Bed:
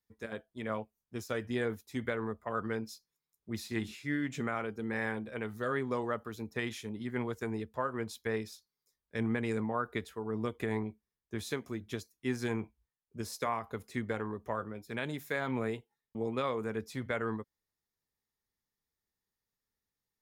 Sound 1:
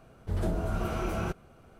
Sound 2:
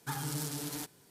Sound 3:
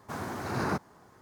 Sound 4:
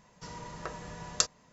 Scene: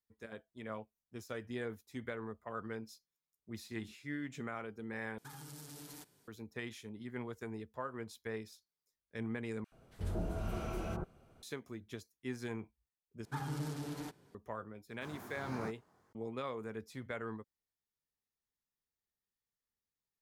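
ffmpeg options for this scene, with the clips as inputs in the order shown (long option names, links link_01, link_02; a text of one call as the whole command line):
ffmpeg -i bed.wav -i cue0.wav -i cue1.wav -i cue2.wav -filter_complex "[2:a]asplit=2[link_01][link_02];[0:a]volume=-7.5dB[link_03];[link_01]acompressor=threshold=-38dB:ratio=6:attack=3.2:release=140:knee=1:detection=peak[link_04];[1:a]acrossover=split=1400[link_05][link_06];[link_05]adelay=80[link_07];[link_07][link_06]amix=inputs=2:normalize=0[link_08];[link_02]lowpass=frequency=1500:poles=1[link_09];[3:a]flanger=delay=18:depth=5:speed=2.4[link_10];[link_03]asplit=4[link_11][link_12][link_13][link_14];[link_11]atrim=end=5.184[link_15];[link_04]atrim=end=1.1,asetpts=PTS-STARTPTS,volume=-8.5dB[link_16];[link_12]atrim=start=6.276:end=9.644[link_17];[link_08]atrim=end=1.79,asetpts=PTS-STARTPTS,volume=-7.5dB[link_18];[link_13]atrim=start=11.426:end=13.254[link_19];[link_09]atrim=end=1.1,asetpts=PTS-STARTPTS,volume=-1dB[link_20];[link_14]atrim=start=14.346[link_21];[link_10]atrim=end=1.21,asetpts=PTS-STARTPTS,volume=-11dB,afade=type=in:duration=0.004:curve=hsin,afade=type=out:start_time=1.206:duration=0.004:curve=hsin,adelay=657972S[link_22];[link_15][link_16]acrossfade=duration=0.004:curve1=hsin:curve2=hsin[link_23];[link_23][link_17]acrossfade=duration=0.004:curve1=hsin:curve2=hsin[link_24];[link_24][link_18]acrossfade=duration=0.004:curve1=hsin:curve2=hsin[link_25];[link_25][link_19]acrossfade=duration=0.004:curve1=hsin:curve2=hsin[link_26];[link_26][link_20]acrossfade=duration=0.004:curve1=hsin:curve2=hsin[link_27];[link_27][link_21]acrossfade=duration=0.004:curve1=hsin:curve2=hsin[link_28];[link_28][link_22]amix=inputs=2:normalize=0" out.wav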